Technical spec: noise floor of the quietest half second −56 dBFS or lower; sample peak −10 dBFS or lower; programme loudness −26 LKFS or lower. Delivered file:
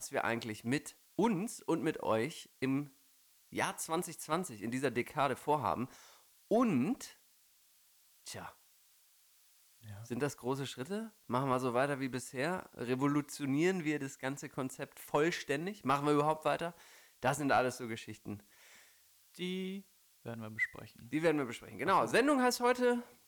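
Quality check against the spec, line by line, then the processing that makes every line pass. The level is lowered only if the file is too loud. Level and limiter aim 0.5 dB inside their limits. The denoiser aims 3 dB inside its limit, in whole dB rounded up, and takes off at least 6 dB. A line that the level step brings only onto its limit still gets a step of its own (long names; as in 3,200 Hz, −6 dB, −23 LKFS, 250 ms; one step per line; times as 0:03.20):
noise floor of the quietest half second −68 dBFS: in spec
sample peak −19.5 dBFS: in spec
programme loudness −35.0 LKFS: in spec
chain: no processing needed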